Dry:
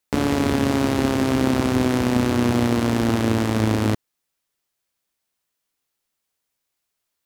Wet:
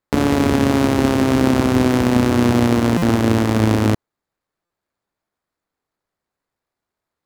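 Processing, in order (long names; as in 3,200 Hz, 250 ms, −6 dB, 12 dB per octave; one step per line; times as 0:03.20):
running median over 15 samples
buffer that repeats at 0:02.97/0:04.65, samples 256, times 8
level +4.5 dB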